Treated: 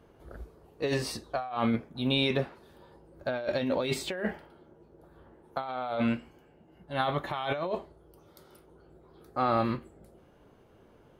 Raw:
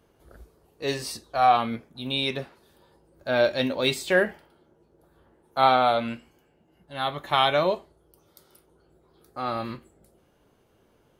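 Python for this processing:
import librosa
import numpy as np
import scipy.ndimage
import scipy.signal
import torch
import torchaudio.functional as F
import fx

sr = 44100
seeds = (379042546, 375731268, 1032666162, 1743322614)

y = fx.high_shelf(x, sr, hz=3400.0, db=-11.0)
y = fx.over_compress(y, sr, threshold_db=-30.0, ratio=-1.0)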